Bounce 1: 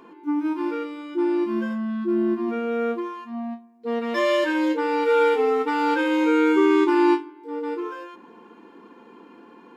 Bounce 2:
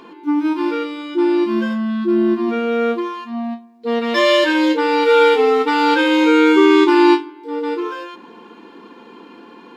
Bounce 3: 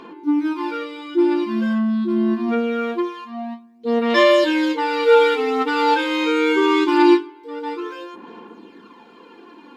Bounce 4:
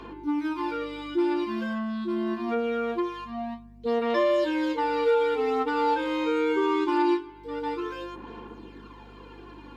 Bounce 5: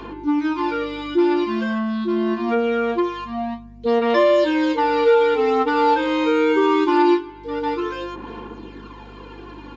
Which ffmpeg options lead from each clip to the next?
-af "equalizer=f=3900:w=1.2:g=8.5,volume=2.11"
-af "aphaser=in_gain=1:out_gain=1:delay=4.8:decay=0.5:speed=0.24:type=sinusoidal,volume=0.596"
-filter_complex "[0:a]aeval=exprs='val(0)+0.00447*(sin(2*PI*50*n/s)+sin(2*PI*2*50*n/s)/2+sin(2*PI*3*50*n/s)/3+sin(2*PI*4*50*n/s)/4+sin(2*PI*5*50*n/s)/5)':c=same,acrossover=split=370|1100[s0][s1][s2];[s0]acompressor=threshold=0.0224:ratio=4[s3];[s1]acompressor=threshold=0.1:ratio=4[s4];[s2]acompressor=threshold=0.0158:ratio=4[s5];[s3][s4][s5]amix=inputs=3:normalize=0,volume=0.75"
-af "aresample=16000,aresample=44100,volume=2.37"

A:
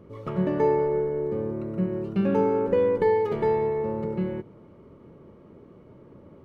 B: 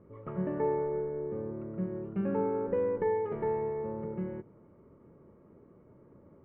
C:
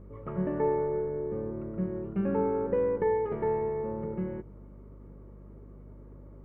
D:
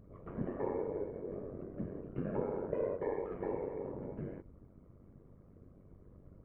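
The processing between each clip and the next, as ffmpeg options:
-af "lowpass=f=2100:w=0.5412,lowpass=f=2100:w=1.3066,volume=0.398"
-af "aeval=exprs='val(0)+0.00316*(sin(2*PI*50*n/s)+sin(2*PI*2*50*n/s)/2+sin(2*PI*3*50*n/s)/3+sin(2*PI*4*50*n/s)/4+sin(2*PI*5*50*n/s)/5)':c=same,volume=1.33"
-af "afftfilt=real='hypot(re,im)*cos(2*PI*random(0))':imag='hypot(re,im)*sin(2*PI*random(1))':win_size=512:overlap=0.75,bandreject=f=880:w=12,tremolo=f=95:d=0.621"

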